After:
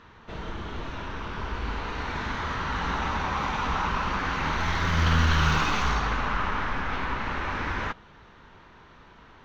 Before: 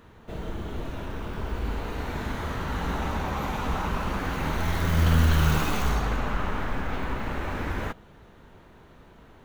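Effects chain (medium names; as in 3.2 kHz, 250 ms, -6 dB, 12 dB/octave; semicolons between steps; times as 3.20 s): FFT filter 670 Hz 0 dB, 1 kHz +8 dB, 5.9 kHz +6 dB, 9 kHz -17 dB; trim -2.5 dB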